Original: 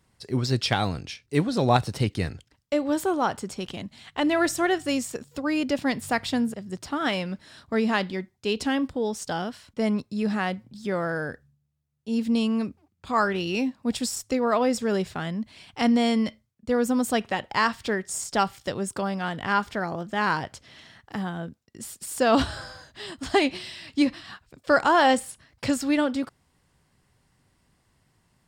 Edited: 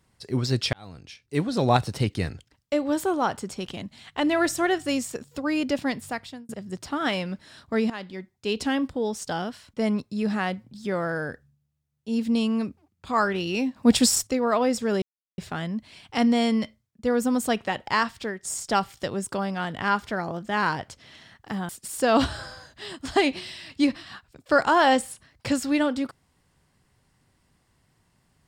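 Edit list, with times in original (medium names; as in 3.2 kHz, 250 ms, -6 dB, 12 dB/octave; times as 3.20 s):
0.73–1.59 s: fade in
5.76–6.49 s: fade out
7.90–8.57 s: fade in, from -15 dB
13.76–14.27 s: gain +9 dB
15.02 s: insert silence 0.36 s
17.58–18.07 s: fade out, to -8 dB
21.33–21.87 s: delete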